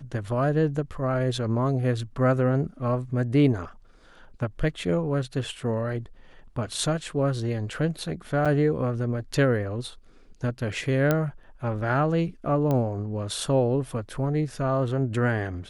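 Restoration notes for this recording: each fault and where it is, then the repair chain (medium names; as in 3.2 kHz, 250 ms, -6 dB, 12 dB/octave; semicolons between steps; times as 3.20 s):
8.45–8.46 s: dropout 6.5 ms
11.11 s: pop -9 dBFS
12.71 s: pop -15 dBFS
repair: de-click; interpolate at 8.45 s, 6.5 ms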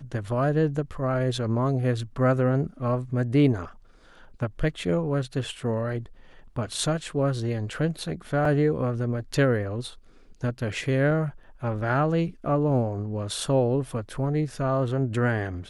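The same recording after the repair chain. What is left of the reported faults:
12.71 s: pop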